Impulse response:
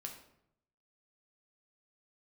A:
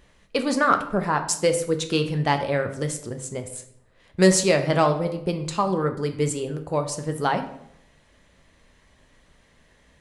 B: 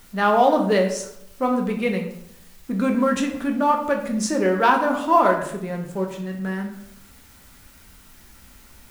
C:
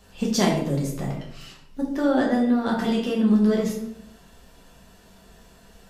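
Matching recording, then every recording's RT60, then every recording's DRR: B; 0.75 s, 0.75 s, 0.75 s; 6.0 dB, 1.5 dB, -3.0 dB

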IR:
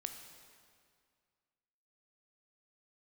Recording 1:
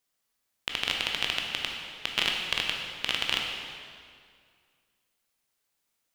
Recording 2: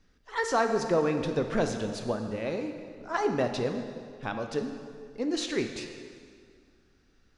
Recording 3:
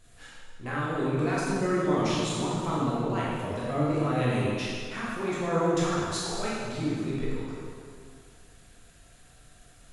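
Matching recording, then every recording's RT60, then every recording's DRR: 2; 2.1 s, 2.1 s, 2.1 s; 0.5 dB, 5.5 dB, -7.5 dB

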